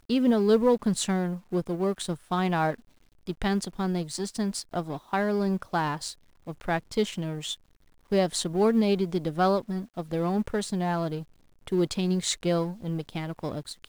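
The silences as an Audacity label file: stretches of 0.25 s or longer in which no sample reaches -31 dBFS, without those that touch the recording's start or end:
2.740000	3.270000	silence
6.110000	6.470000	silence
7.540000	8.120000	silence
11.210000	11.670000	silence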